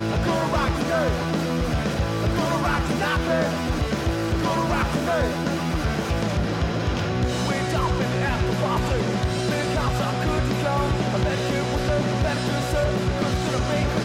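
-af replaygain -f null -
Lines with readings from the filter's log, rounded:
track_gain = +7.0 dB
track_peak = 0.167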